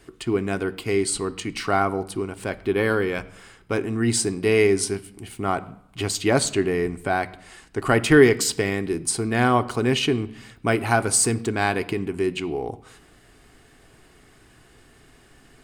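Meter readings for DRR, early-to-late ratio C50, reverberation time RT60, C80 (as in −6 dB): 9.0 dB, 18.5 dB, 0.75 s, 20.5 dB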